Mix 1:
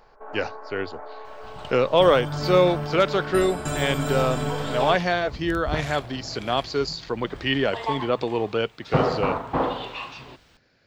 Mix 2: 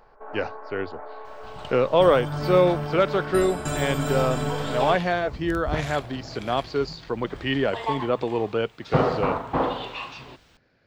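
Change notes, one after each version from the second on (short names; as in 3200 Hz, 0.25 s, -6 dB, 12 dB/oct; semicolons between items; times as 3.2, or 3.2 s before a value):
speech: add LPF 2100 Hz 6 dB/oct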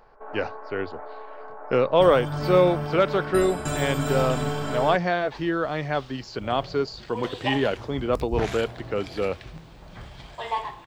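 second sound: entry +2.65 s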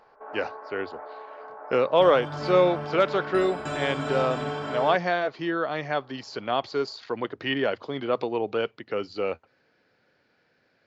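first sound: add Gaussian blur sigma 1.6 samples; second sound: muted; master: add HPF 310 Hz 6 dB/oct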